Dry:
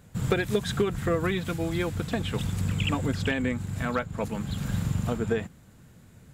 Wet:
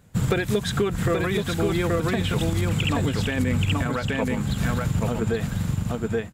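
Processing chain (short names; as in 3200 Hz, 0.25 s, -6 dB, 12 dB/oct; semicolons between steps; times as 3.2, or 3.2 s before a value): echo 0.827 s -3.5 dB; limiter -22 dBFS, peak gain reduction 9.5 dB; upward expander 1.5:1, over -47 dBFS; gain +8.5 dB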